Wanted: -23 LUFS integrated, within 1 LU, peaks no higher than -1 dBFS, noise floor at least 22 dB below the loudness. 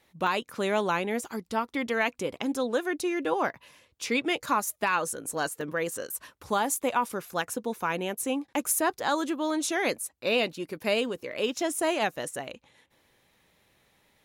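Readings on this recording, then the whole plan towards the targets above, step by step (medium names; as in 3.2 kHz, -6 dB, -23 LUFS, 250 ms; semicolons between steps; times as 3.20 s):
dropouts 2; longest dropout 3.0 ms; loudness -29.0 LUFS; peak level -14.0 dBFS; loudness target -23.0 LUFS
-> interpolate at 0.27/5.61 s, 3 ms; trim +6 dB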